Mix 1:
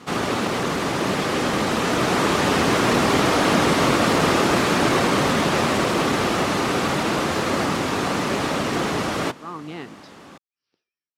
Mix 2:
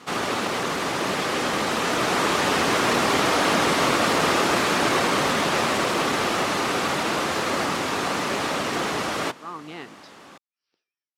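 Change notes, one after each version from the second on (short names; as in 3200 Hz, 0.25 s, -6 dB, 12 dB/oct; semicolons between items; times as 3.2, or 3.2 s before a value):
master: add low shelf 330 Hz -9 dB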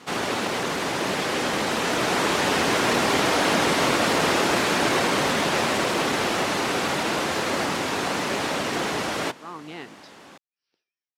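master: add bell 1200 Hz -5 dB 0.23 oct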